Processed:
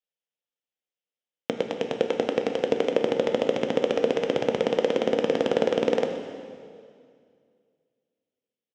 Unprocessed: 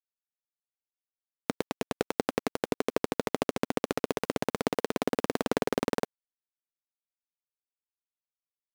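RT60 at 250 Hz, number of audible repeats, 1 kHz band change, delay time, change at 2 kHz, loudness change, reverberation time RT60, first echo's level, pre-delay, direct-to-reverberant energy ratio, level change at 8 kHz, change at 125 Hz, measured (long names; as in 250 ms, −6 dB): 2.4 s, 1, +2.0 dB, 124 ms, +2.0 dB, +6.5 dB, 2.2 s, −15.0 dB, 8 ms, 4.5 dB, can't be measured, +1.5 dB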